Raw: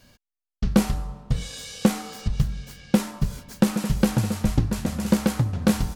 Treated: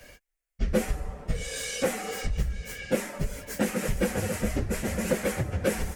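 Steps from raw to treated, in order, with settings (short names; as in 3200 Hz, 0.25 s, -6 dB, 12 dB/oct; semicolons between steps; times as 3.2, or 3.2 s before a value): phase scrambler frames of 50 ms; ten-band EQ 125 Hz -8 dB, 250 Hz -5 dB, 500 Hz +8 dB, 1000 Hz -7 dB, 2000 Hz +9 dB, 4000 Hz -8 dB, 8000 Hz +3 dB; compressor 2:1, threshold -36 dBFS, peak gain reduction 12.5 dB; gain +6 dB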